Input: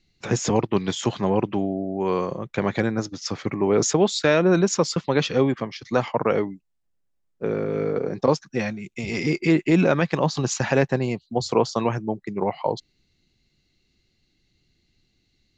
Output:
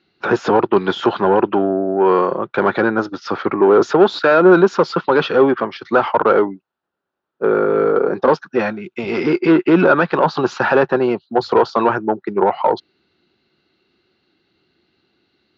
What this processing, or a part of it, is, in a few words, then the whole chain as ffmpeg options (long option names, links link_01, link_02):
overdrive pedal into a guitar cabinet: -filter_complex "[0:a]asplit=2[link_01][link_02];[link_02]highpass=frequency=720:poles=1,volume=19dB,asoftclip=type=tanh:threshold=-5dB[link_03];[link_01][link_03]amix=inputs=2:normalize=0,lowpass=frequency=1300:poles=1,volume=-6dB,highpass=92,equalizer=frequency=130:width_type=q:width=4:gain=-5,equalizer=frequency=370:width_type=q:width=4:gain=6,equalizer=frequency=900:width_type=q:width=4:gain=4,equalizer=frequency=1400:width_type=q:width=4:gain=10,equalizer=frequency=2100:width_type=q:width=4:gain=-7,lowpass=frequency=4600:width=0.5412,lowpass=frequency=4600:width=1.3066,volume=1dB"